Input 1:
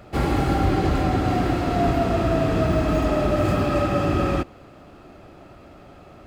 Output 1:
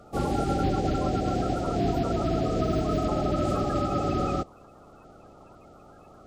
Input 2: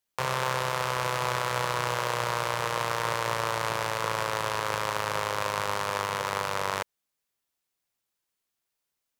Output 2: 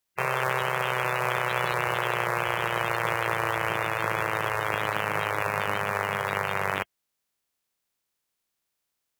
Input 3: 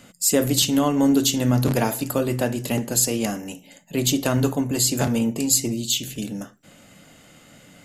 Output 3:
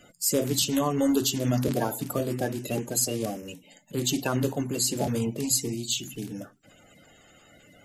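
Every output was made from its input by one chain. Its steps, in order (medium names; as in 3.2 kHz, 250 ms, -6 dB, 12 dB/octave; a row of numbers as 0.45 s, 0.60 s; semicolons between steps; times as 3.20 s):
coarse spectral quantiser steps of 30 dB; normalise loudness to -27 LUFS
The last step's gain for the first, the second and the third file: -4.5 dB, +2.5 dB, -5.0 dB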